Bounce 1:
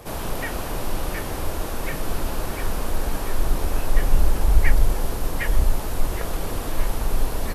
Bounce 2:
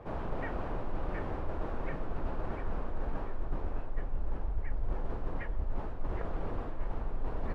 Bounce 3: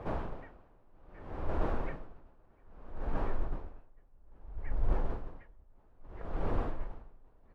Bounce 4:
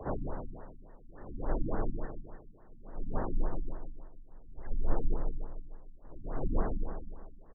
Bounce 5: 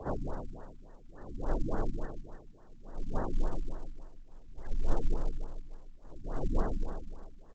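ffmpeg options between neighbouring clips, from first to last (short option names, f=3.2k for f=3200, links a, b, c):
-af "lowpass=1.5k,areverse,acompressor=threshold=-22dB:ratio=6,areverse,volume=-6dB"
-af "aeval=exprs='val(0)*pow(10,-33*(0.5-0.5*cos(2*PI*0.61*n/s))/20)':c=same,volume=4.5dB"
-af "afreqshift=-35,aecho=1:1:152|304|456|608|760|912|1064:0.501|0.271|0.146|0.0789|0.0426|0.023|0.0124,afftfilt=real='re*lt(b*sr/1024,290*pow(2100/290,0.5+0.5*sin(2*PI*3.5*pts/sr)))':imag='im*lt(b*sr/1024,290*pow(2100/290,0.5+0.5*sin(2*PI*3.5*pts/sr)))':win_size=1024:overlap=0.75,volume=2dB"
-ar 16000 -c:a pcm_mulaw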